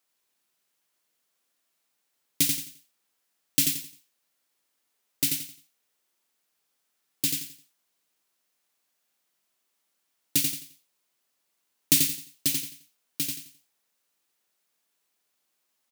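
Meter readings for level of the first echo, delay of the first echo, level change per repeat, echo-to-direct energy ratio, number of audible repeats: -4.5 dB, 87 ms, -10.5 dB, -4.0 dB, 3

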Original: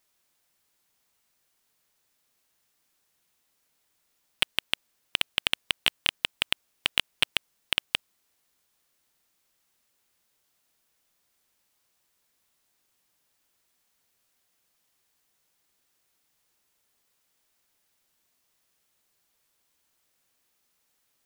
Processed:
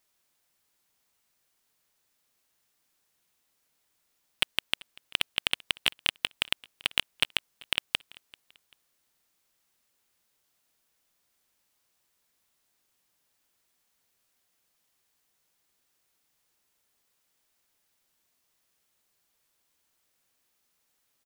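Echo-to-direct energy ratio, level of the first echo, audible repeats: -23.5 dB, -24.0 dB, 2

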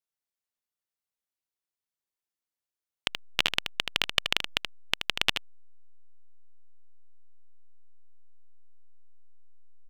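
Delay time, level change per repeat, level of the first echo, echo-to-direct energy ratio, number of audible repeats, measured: 78 ms, no regular repeats, -7.5 dB, -7.5 dB, 1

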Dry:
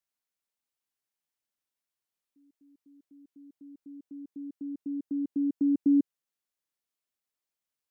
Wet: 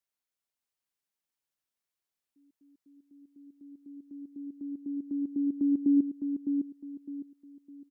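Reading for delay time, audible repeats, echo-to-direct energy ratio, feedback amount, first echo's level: 608 ms, 3, -5.5 dB, 32%, -6.0 dB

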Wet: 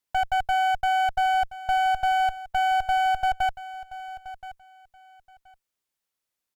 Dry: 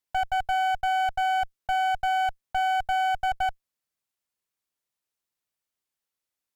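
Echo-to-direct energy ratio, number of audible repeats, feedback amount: -15.5 dB, 2, 19%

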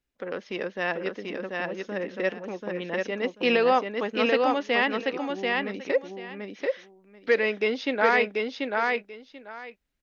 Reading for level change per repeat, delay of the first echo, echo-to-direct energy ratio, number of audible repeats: -15.0 dB, 737 ms, -3.0 dB, 2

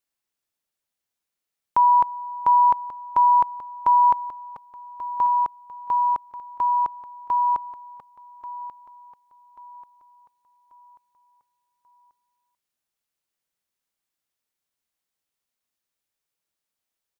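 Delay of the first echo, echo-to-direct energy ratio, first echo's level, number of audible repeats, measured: 1137 ms, -14.0 dB, -14.5 dB, 3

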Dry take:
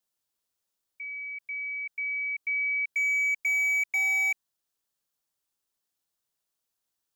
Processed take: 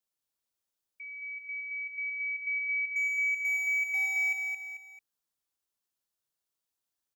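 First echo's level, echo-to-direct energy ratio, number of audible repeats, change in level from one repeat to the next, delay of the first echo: -5.0 dB, -4.0 dB, 3, -7.5 dB, 221 ms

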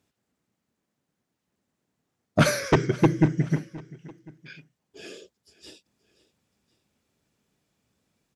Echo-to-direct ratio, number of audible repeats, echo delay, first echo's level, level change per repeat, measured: -19.5 dB, 2, 525 ms, -20.5 dB, -6.0 dB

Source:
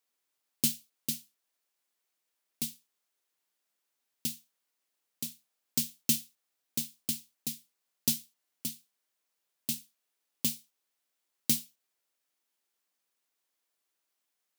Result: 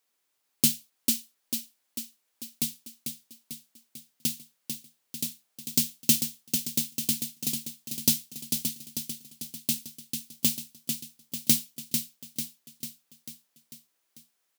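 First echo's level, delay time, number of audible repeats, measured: -6.5 dB, 445 ms, 6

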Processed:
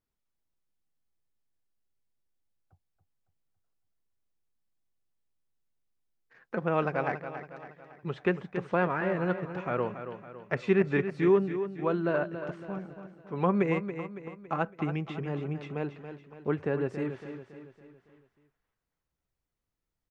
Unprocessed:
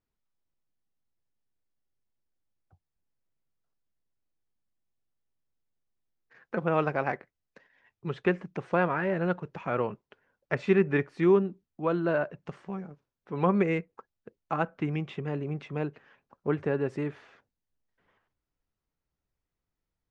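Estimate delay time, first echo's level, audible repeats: 279 ms, -10.0 dB, 4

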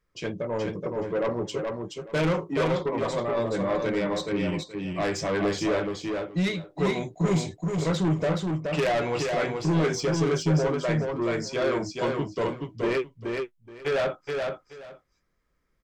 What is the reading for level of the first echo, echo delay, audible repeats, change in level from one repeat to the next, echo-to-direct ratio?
-4.0 dB, 425 ms, 2, -14.5 dB, -4.0 dB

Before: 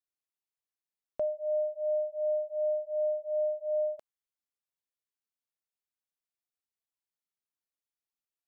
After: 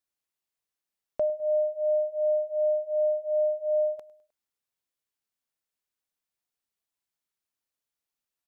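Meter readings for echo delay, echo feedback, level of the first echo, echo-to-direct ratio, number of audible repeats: 103 ms, 44%, -20.0 dB, -19.0 dB, 3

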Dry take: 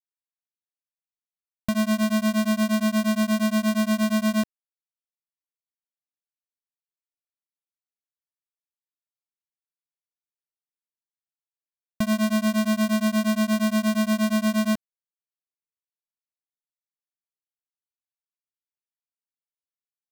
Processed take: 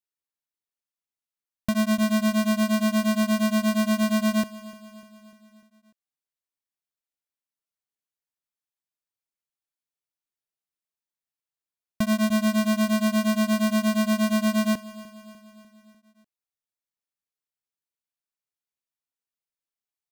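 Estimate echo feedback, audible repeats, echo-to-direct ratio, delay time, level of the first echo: 56%, 4, -16.5 dB, 298 ms, -18.0 dB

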